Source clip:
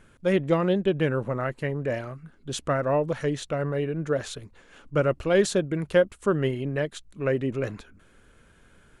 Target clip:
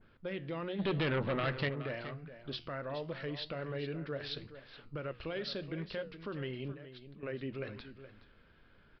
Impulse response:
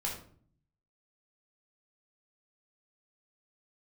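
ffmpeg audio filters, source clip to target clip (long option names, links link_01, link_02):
-filter_complex "[0:a]bandreject=frequency=60:width_type=h:width=6,bandreject=frequency=120:width_type=h:width=6,bandreject=frequency=180:width_type=h:width=6,alimiter=level_in=1dB:limit=-24dB:level=0:latency=1:release=188,volume=-1dB,asettb=1/sr,asplit=3[link_01][link_02][link_03];[link_01]atrim=end=6.724[link_04];[link_02]atrim=start=6.72:end=7.23,asetpts=PTS-STARTPTS,afade=type=in:duration=0.004:curve=qsin,afade=type=out:start_time=0.506:duration=0.004:curve=qsin,acompressor=threshold=-45dB:ratio=6[link_05];[link_03]atrim=start=7.226[link_06];[link_04][link_05]acrossfade=duration=0.004:curve1=hsin:curve2=qsin[link_07];[link_07][link_06]acrossfade=duration=0.004:curve1=qsin:curve2=hsin,flanger=delay=9.3:depth=9.2:regen=-80:speed=0.84:shape=triangular,asplit=3[link_08][link_09][link_10];[link_08]afade=type=out:start_time=0.78:duration=0.02[link_11];[link_09]aeval=exprs='0.0501*sin(PI/2*2.24*val(0)/0.0501)':channel_layout=same,afade=type=in:start_time=0.78:duration=0.02,afade=type=out:start_time=1.68:duration=0.02[link_12];[link_10]afade=type=in:start_time=1.68:duration=0.02[link_13];[link_11][link_12][link_13]amix=inputs=3:normalize=0,asplit=2[link_14][link_15];[link_15]aecho=0:1:421:0.237[link_16];[link_14][link_16]amix=inputs=2:normalize=0,aresample=11025,aresample=44100,adynamicequalizer=threshold=0.00282:dfrequency=1600:dqfactor=0.7:tfrequency=1600:tqfactor=0.7:attack=5:release=100:ratio=0.375:range=4:mode=boostabove:tftype=highshelf,volume=-2.5dB"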